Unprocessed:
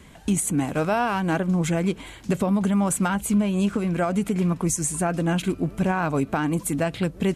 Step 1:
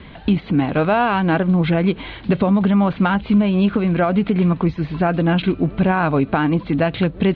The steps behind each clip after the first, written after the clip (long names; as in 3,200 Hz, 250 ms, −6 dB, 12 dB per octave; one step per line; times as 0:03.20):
Butterworth low-pass 4,200 Hz 72 dB per octave
in parallel at −2 dB: downward compressor, threshold −29 dBFS, peak gain reduction 11.5 dB
on the sum: level +4 dB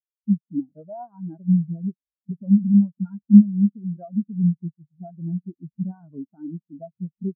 every bin expanded away from the loudest bin 4 to 1
level +4.5 dB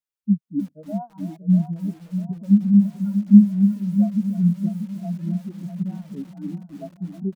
repeating echo 645 ms, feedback 46%, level −10 dB
feedback echo at a low word length 315 ms, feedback 35%, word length 7 bits, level −13 dB
level +1 dB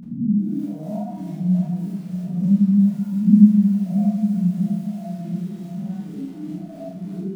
peak hold with a rise ahead of every peak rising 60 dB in 0.89 s
four-comb reverb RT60 0.74 s, combs from 26 ms, DRR −3 dB
level −5.5 dB